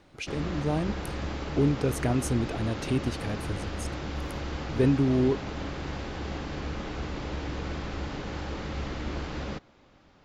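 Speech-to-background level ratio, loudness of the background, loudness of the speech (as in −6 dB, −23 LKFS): 6.5 dB, −35.5 LKFS, −29.0 LKFS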